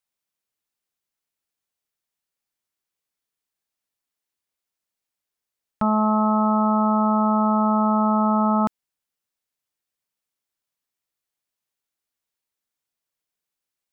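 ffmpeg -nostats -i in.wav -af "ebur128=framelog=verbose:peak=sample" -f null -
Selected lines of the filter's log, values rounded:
Integrated loudness:
  I:         -20.0 LUFS
  Threshold: -30.0 LUFS
Loudness range:
  LRA:         9.9 LU
  Threshold: -42.6 LUFS
  LRA low:   -29.7 LUFS
  LRA high:  -19.8 LUFS
Sample peak:
  Peak:      -12.5 dBFS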